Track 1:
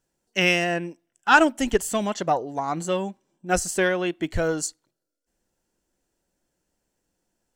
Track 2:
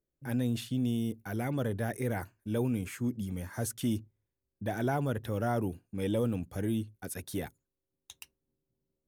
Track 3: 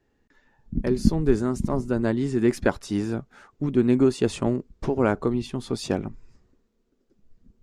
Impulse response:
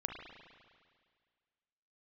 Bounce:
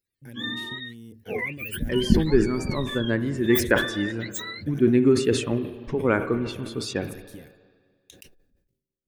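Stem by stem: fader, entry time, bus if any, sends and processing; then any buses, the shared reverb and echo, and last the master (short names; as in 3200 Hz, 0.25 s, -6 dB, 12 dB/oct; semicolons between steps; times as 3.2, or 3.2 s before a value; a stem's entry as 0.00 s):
-9.0 dB, 0.00 s, no send, spectrum mirrored in octaves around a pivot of 800 Hz; tilt +4 dB/oct
-9.0 dB, 0.00 s, no send, transient shaper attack +9 dB, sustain +5 dB; compressor, threshold -30 dBFS, peak gain reduction 10.5 dB
-2.5 dB, 1.05 s, send -4 dB, per-bin expansion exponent 1.5; bell 1300 Hz +11.5 dB 1.5 oct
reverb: on, RT60 1.9 s, pre-delay 35 ms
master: band shelf 960 Hz -10.5 dB 1.3 oct; sustainer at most 96 dB/s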